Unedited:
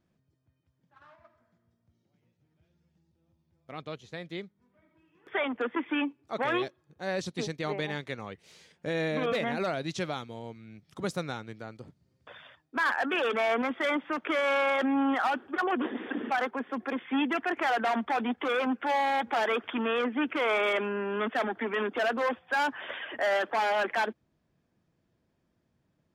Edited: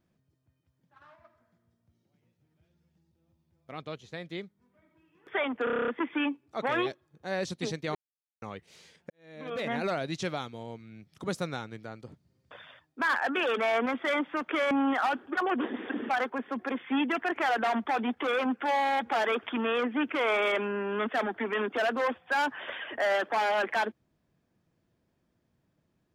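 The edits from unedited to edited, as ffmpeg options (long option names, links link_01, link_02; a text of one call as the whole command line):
ffmpeg -i in.wav -filter_complex "[0:a]asplit=13[link_01][link_02][link_03][link_04][link_05][link_06][link_07][link_08][link_09][link_10][link_11][link_12][link_13];[link_01]atrim=end=5.672[link_14];[link_02]atrim=start=5.638:end=5.672[link_15];[link_03]atrim=start=5.638:end=5.672[link_16];[link_04]atrim=start=5.638:end=5.672[link_17];[link_05]atrim=start=5.638:end=5.672[link_18];[link_06]atrim=start=5.638:end=5.672[link_19];[link_07]atrim=start=5.638:end=5.672[link_20];[link_08]atrim=start=5.638:end=5.672[link_21];[link_09]atrim=start=5.638:end=7.71,asetpts=PTS-STARTPTS,afade=type=out:start_time=2.068:duration=0.004:curve=hsin[link_22];[link_10]atrim=start=7.71:end=8.18,asetpts=PTS-STARTPTS,volume=0[link_23];[link_11]atrim=start=8.18:end=8.86,asetpts=PTS-STARTPTS,afade=type=in:duration=0.004:curve=hsin,afade=type=out:start_time=0.676:duration=0.004:curve=hsin[link_24];[link_12]atrim=start=8.86:end=14.472,asetpts=PTS-STARTPTS,afade=type=in:duration=0.64:curve=qua[link_25];[link_13]atrim=start=14.918[link_26];[link_14][link_15]acrossfade=duration=0.004:curve1=hsin:curve2=hsin[link_27];[link_27][link_16]acrossfade=duration=0.004:curve1=hsin:curve2=hsin[link_28];[link_28][link_17]acrossfade=duration=0.004:curve1=hsin:curve2=hsin[link_29];[link_29][link_18]acrossfade=duration=0.004:curve1=hsin:curve2=hsin[link_30];[link_30][link_19]acrossfade=duration=0.004:curve1=hsin:curve2=hsin[link_31];[link_31][link_20]acrossfade=duration=0.004:curve1=hsin:curve2=hsin[link_32];[link_32][link_21]acrossfade=duration=0.004:curve1=hsin:curve2=hsin[link_33];[link_22][link_23][link_24][link_25]concat=n=4:v=0:a=1[link_34];[link_33][link_34]acrossfade=duration=0.004:curve1=hsin:curve2=hsin[link_35];[link_35][link_26]acrossfade=duration=0.004:curve1=hsin:curve2=hsin" out.wav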